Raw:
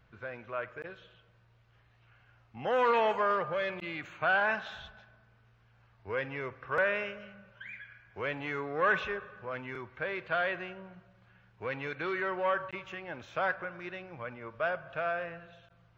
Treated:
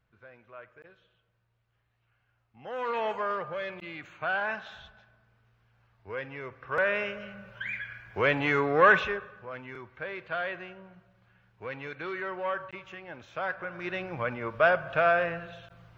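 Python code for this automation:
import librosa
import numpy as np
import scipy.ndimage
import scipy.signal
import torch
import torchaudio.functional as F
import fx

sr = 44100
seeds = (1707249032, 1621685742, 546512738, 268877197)

y = fx.gain(x, sr, db=fx.line((2.58, -10.5), (3.07, -2.5), (6.41, -2.5), (7.62, 10.0), (8.75, 10.0), (9.47, -2.0), (13.47, -2.0), (14.01, 9.5)))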